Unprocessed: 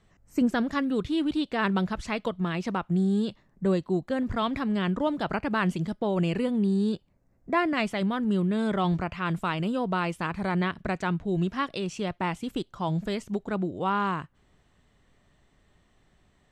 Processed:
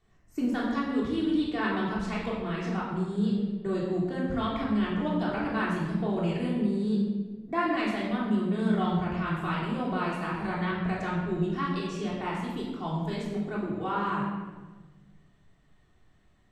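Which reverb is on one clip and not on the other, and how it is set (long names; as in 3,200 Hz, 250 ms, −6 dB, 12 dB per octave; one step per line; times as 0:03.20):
rectangular room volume 1,000 cubic metres, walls mixed, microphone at 3.4 metres
level −9.5 dB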